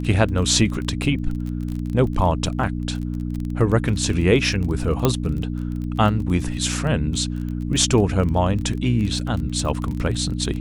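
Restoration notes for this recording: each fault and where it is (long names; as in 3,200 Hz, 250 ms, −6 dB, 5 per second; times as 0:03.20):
surface crackle 23 per second −27 dBFS
mains hum 60 Hz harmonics 5 −26 dBFS
0:05.05: click −4 dBFS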